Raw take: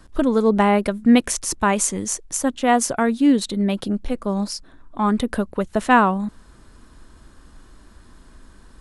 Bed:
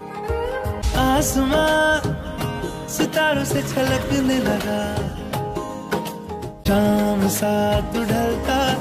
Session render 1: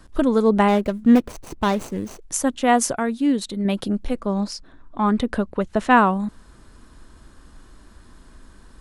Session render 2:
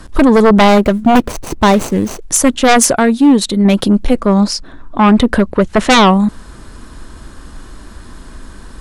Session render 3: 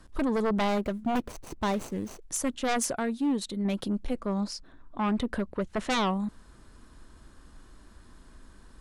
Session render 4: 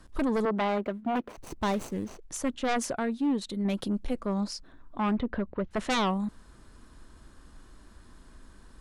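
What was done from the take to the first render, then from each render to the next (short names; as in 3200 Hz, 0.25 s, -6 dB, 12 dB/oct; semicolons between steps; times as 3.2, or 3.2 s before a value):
0.68–2.22 median filter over 25 samples; 2.96–3.65 gain -4 dB; 4.2–5.97 air absorption 56 m
sine folder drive 10 dB, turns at -3.5 dBFS
gain -19 dB
0.45–1.38 three-band isolator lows -17 dB, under 180 Hz, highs -14 dB, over 3400 Hz; 2.04–3.49 high shelf 7400 Hz -11 dB; 5.15–5.71 air absorption 290 m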